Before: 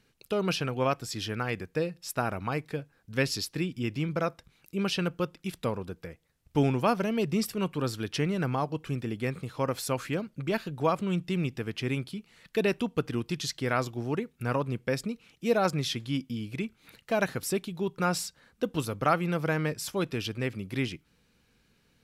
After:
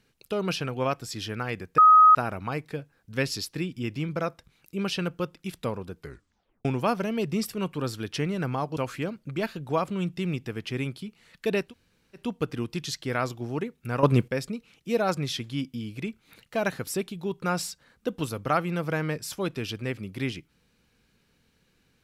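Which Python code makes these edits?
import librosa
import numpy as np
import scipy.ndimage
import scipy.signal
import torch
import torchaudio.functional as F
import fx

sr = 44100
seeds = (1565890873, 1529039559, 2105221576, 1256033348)

y = fx.edit(x, sr, fx.bleep(start_s=1.78, length_s=0.37, hz=1260.0, db=-11.0),
    fx.tape_stop(start_s=5.98, length_s=0.67),
    fx.cut(start_s=8.77, length_s=1.11),
    fx.insert_room_tone(at_s=12.77, length_s=0.55, crossfade_s=0.16),
    fx.clip_gain(start_s=14.59, length_s=0.25, db=11.5), tone=tone)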